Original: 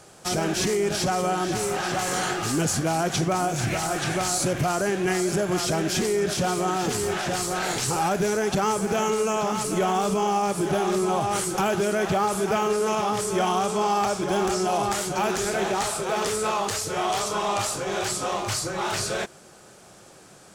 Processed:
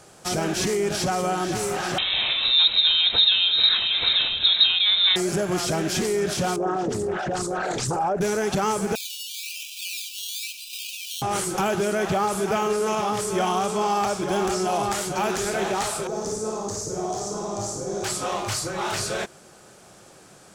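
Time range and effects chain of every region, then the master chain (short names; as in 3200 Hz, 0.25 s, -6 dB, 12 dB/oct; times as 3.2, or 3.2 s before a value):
1.98–5.16 low shelf 400 Hz +9 dB + inverted band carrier 3900 Hz
6.56–8.21 formant sharpening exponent 2 + Doppler distortion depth 0.38 ms
8.95–11.22 decimation with a swept rate 14×, swing 60% 1 Hz + brick-wall FIR high-pass 2300 Hz + echo 0.111 s -12.5 dB
16.07–18.04 EQ curve 390 Hz 0 dB, 2900 Hz -23 dB, 6300 Hz 0 dB, 11000 Hz -14 dB + flutter echo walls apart 9.4 m, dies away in 0.69 s
whole clip: dry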